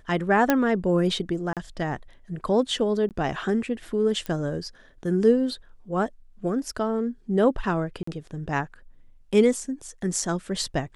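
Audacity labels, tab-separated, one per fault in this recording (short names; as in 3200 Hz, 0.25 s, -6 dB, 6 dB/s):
0.500000	0.500000	pop -6 dBFS
1.530000	1.570000	gap 37 ms
3.090000	3.110000	gap 18 ms
4.260000	4.260000	pop -17 dBFS
8.030000	8.070000	gap 44 ms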